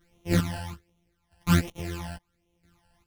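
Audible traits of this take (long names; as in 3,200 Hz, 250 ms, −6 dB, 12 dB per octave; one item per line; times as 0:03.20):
a buzz of ramps at a fixed pitch in blocks of 256 samples
phaser sweep stages 12, 1.3 Hz, lowest notch 370–1,600 Hz
chopped level 0.76 Hz, depth 65%, duty 30%
a shimmering, thickened sound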